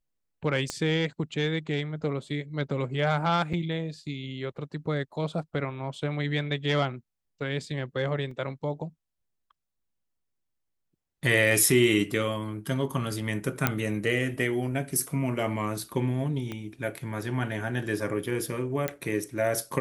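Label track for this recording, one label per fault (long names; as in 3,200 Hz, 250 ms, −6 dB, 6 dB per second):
0.700000	0.700000	click −16 dBFS
3.530000	3.540000	drop-out 5.9 ms
8.310000	8.310000	drop-out 3.3 ms
13.670000	13.670000	click −6 dBFS
16.520000	16.520000	click −21 dBFS
18.880000	18.880000	click −13 dBFS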